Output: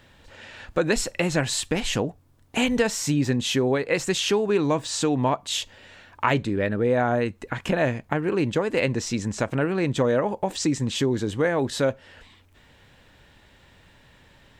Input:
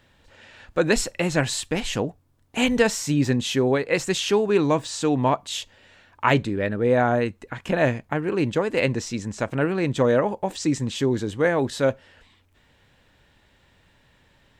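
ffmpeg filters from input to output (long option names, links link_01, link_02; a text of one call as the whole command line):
ffmpeg -i in.wav -af "acompressor=threshold=-29dB:ratio=2,volume=5dB" out.wav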